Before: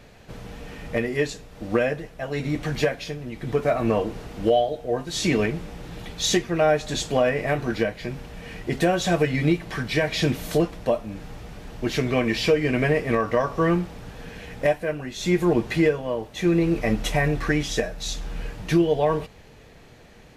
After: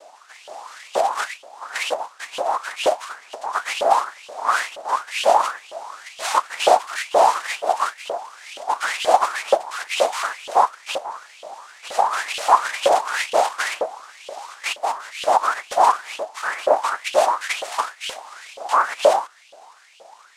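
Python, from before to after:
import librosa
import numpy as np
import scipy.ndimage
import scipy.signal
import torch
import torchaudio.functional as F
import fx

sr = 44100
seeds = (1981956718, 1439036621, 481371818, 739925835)

y = fx.noise_vocoder(x, sr, seeds[0], bands=2)
y = fx.dynamic_eq(y, sr, hz=5500.0, q=0.87, threshold_db=-41.0, ratio=4.0, max_db=-4)
y = fx.filter_lfo_highpass(y, sr, shape='saw_up', hz=2.1, low_hz=530.0, high_hz=3100.0, q=6.5)
y = y * librosa.db_to_amplitude(-1.5)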